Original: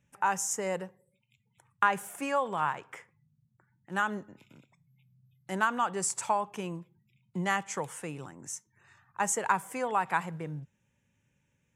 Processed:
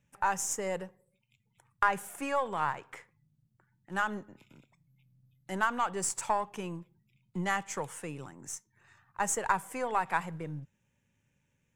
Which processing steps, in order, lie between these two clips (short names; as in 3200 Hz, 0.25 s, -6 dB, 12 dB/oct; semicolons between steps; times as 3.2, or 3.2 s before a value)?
half-wave gain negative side -3 dB